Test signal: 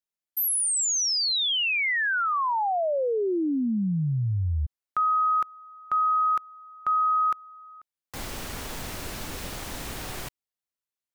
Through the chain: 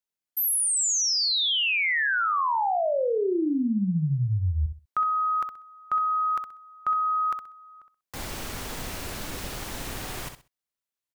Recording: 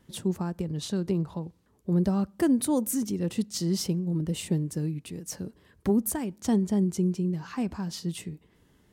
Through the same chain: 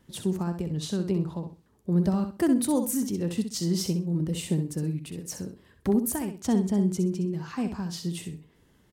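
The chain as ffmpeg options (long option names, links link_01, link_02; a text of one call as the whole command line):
ffmpeg -i in.wav -af "aecho=1:1:64|128|192:0.398|0.0916|0.0211" out.wav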